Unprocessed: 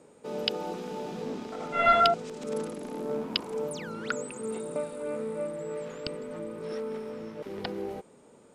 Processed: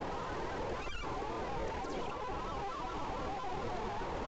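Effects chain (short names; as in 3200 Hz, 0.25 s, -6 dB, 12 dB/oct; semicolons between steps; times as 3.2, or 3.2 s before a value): infinite clipping; grains, pitch spread up and down by 3 st; downsampling 8000 Hz; speed mistake 7.5 ips tape played at 15 ips; tilt -3.5 dB/oct; gain -7 dB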